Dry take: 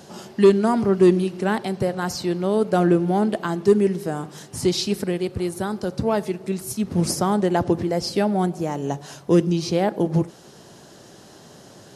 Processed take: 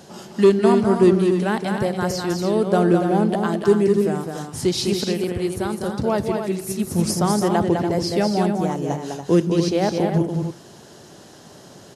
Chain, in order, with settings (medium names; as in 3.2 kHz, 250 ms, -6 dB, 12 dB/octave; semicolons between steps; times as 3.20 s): loudspeakers at several distances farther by 70 m -5 dB, 98 m -8 dB